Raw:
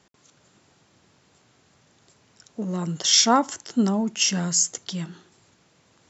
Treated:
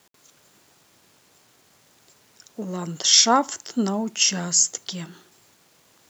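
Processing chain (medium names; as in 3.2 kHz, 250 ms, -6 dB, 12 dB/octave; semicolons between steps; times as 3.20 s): word length cut 10-bit, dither none; tone controls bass -6 dB, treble +2 dB; trim +1 dB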